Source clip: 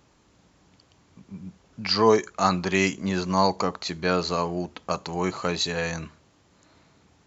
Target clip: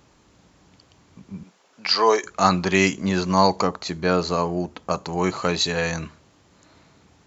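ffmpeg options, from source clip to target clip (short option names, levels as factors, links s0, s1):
-filter_complex "[0:a]asettb=1/sr,asplit=3[s0][s1][s2];[s0]atrim=end=1.434[s3];[s1]atrim=start=1.43:end=2.24,asetpts=PTS-STARTPTS,afade=t=in:d=0.004:c=qsin,afade=t=out:st=0.806:d=0.004:c=qsin,highpass=510[s4];[s2]atrim=start=2.236[s5];[s3][s4]acrossfade=d=0.004:c1=hsin:c2=qsin[s6];[s6][s5]acrossfade=d=0.004:c1=qsin:c2=hsin,asettb=1/sr,asplit=3[s7][s8][s9];[s7]atrim=end=3.674[s10];[s8]atrim=start=3.67:end=5.18,asetpts=PTS-STARTPTS,afade=t=in:d=0.004:c=qsin,afade=t=out:st=1.506:d=0.004:c=qsin,equalizer=f=3300:w=0.55:g=-4.5[s11];[s9]atrim=start=5.176[s12];[s10][s11]acrossfade=d=0.004:c1=hsin:c2=qsin[s13];[s13][s12]acrossfade=d=0.004:c1=qsin:c2=hsin,volume=1.58"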